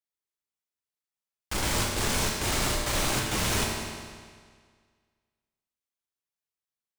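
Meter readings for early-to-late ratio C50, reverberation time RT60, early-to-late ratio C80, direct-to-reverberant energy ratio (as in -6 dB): 1.5 dB, 1.8 s, 2.5 dB, -2.0 dB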